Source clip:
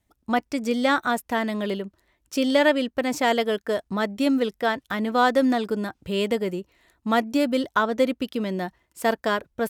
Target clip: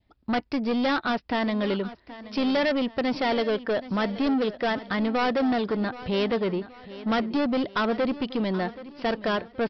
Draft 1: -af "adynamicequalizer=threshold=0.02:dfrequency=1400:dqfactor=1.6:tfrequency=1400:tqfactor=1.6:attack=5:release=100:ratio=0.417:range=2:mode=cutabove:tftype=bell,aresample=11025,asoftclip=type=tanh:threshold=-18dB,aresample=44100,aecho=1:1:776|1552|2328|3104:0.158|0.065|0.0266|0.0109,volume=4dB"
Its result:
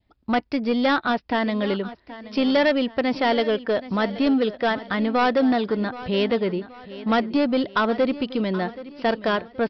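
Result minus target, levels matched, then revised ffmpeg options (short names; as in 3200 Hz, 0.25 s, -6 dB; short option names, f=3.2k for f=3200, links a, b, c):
soft clip: distortion -6 dB
-af "adynamicequalizer=threshold=0.02:dfrequency=1400:dqfactor=1.6:tfrequency=1400:tqfactor=1.6:attack=5:release=100:ratio=0.417:range=2:mode=cutabove:tftype=bell,aresample=11025,asoftclip=type=tanh:threshold=-25dB,aresample=44100,aecho=1:1:776|1552|2328|3104:0.158|0.065|0.0266|0.0109,volume=4dB"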